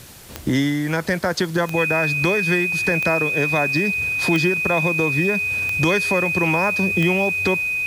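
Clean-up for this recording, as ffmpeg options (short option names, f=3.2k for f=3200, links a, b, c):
-af "adeclick=t=4,bandreject=f=2.5k:w=30,afwtdn=0.0071"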